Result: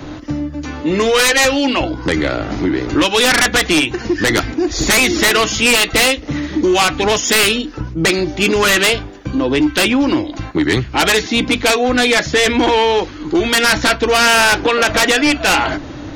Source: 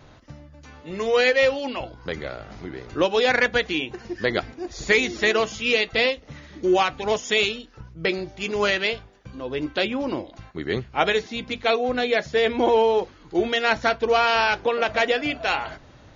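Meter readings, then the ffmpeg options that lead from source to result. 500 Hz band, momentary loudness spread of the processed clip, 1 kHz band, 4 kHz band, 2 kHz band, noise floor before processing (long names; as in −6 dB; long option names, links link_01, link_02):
+5.5 dB, 9 LU, +7.5 dB, +12.0 dB, +9.5 dB, −50 dBFS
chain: -filter_complex "[0:a]equalizer=frequency=300:width=4.3:gain=14.5,acrossover=split=130|1100[link_01][link_02][link_03];[link_02]acompressor=threshold=-30dB:ratio=6[link_04];[link_01][link_04][link_03]amix=inputs=3:normalize=0,aeval=exprs='0.398*sin(PI/2*4.47*val(0)/0.398)':channel_layout=same"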